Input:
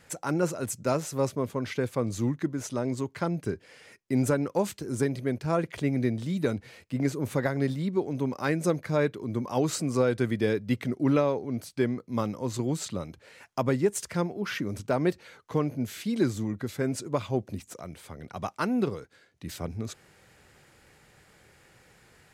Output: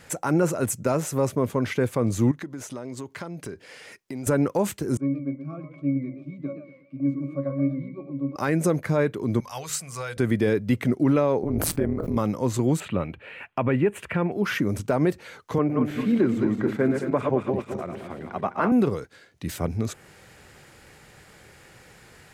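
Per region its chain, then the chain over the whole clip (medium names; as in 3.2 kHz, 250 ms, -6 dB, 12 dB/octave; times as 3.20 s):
2.31–4.27 s: bass shelf 180 Hz -7 dB + compression 4:1, threshold -40 dBFS
4.97–8.36 s: high-pass 160 Hz 24 dB/octave + pitch-class resonator C#, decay 0.22 s + modulated delay 121 ms, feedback 37%, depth 141 cents, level -10 dB
9.40–10.17 s: amplifier tone stack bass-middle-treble 10-0-10 + hum notches 50/100/150/200/250/300/350/400/450/500 Hz
11.43–12.17 s: peaking EQ 5 kHz -12.5 dB 2.6 oct + AM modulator 160 Hz, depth 75% + swell ahead of each attack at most 21 dB/s
12.80–14.32 s: resonant high shelf 3.8 kHz -14 dB, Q 3 + band-stop 2.1 kHz, Q 14
15.58–18.72 s: backward echo that repeats 109 ms, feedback 65%, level -6 dB + three-band isolator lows -12 dB, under 160 Hz, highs -19 dB, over 2.7 kHz
whole clip: dynamic bell 4.5 kHz, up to -7 dB, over -53 dBFS, Q 1.2; peak limiter -19.5 dBFS; trim +7.5 dB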